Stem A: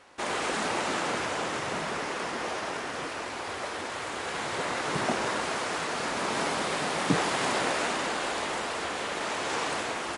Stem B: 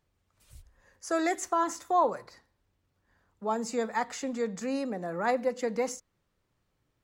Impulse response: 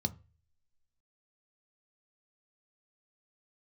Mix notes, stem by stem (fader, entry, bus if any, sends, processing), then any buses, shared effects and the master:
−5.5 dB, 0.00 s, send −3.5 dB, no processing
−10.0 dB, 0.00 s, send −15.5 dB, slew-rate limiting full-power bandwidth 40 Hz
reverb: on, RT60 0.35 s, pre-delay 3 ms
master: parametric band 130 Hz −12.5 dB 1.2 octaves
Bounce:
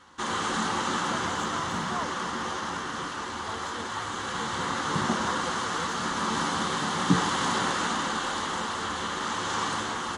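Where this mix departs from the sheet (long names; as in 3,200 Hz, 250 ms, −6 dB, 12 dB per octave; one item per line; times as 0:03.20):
stem A −5.5 dB → +2.5 dB
stem B: missing slew-rate limiting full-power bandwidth 40 Hz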